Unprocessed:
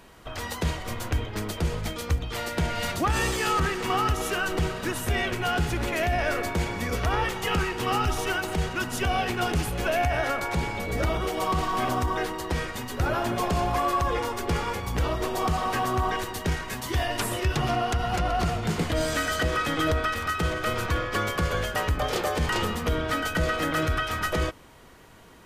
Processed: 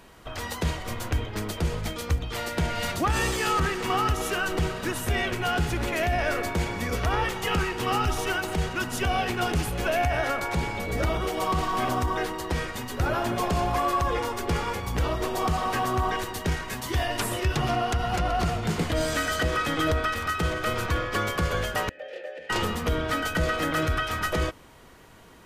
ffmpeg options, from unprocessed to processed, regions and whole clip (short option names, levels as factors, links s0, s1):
-filter_complex "[0:a]asettb=1/sr,asplit=3[s0][s1][s2];[s0]atrim=end=21.894[s3];[s1]atrim=start=21.89:end=22.5,asetpts=PTS-STARTPTS,afade=t=in:d=0.004:c=qsin,afade=t=out:st=0.606:d=0.004:c=qsin,asplit=3[s4][s5][s6];[s4]bandpass=f=530:t=q:w=8,volume=1[s7];[s5]bandpass=f=1840:t=q:w=8,volume=0.501[s8];[s6]bandpass=f=2480:t=q:w=8,volume=0.355[s9];[s7][s8][s9]amix=inputs=3:normalize=0,lowshelf=f=170:g=-12,bandreject=f=450:w=7.5[s10];[s2]atrim=start=22.496[s11];[s3][s10]acrossfade=d=0.004:c1=hsin:c2=qsin[s12];[s12][s11]acrossfade=d=0.004:c1=qsin:c2=hsin"